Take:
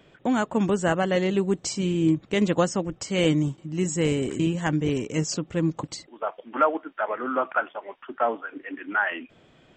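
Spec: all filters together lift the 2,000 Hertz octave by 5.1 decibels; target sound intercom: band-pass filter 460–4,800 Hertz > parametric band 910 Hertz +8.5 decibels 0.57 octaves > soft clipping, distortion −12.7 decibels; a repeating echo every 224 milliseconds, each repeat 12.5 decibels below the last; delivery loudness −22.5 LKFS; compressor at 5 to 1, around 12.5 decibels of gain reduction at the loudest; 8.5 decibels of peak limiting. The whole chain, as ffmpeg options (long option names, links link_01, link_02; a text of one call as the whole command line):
ffmpeg -i in.wav -af "equalizer=frequency=2000:width_type=o:gain=6,acompressor=threshold=-29dB:ratio=5,alimiter=level_in=1dB:limit=-24dB:level=0:latency=1,volume=-1dB,highpass=460,lowpass=4800,equalizer=frequency=910:width_type=o:width=0.57:gain=8.5,aecho=1:1:224|448|672:0.237|0.0569|0.0137,asoftclip=threshold=-30dB,volume=16.5dB" out.wav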